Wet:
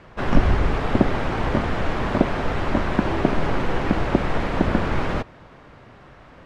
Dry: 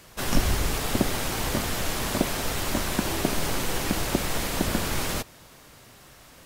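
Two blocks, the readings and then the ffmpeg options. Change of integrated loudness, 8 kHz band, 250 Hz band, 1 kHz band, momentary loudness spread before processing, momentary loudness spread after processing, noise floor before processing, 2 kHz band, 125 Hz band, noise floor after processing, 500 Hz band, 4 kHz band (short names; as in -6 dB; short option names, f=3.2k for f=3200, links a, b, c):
+4.0 dB, under -15 dB, +6.5 dB, +6.0 dB, 2 LU, 4 LU, -51 dBFS, +3.0 dB, +6.5 dB, -47 dBFS, +6.5 dB, -6.0 dB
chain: -af "lowpass=1.8k,volume=6.5dB"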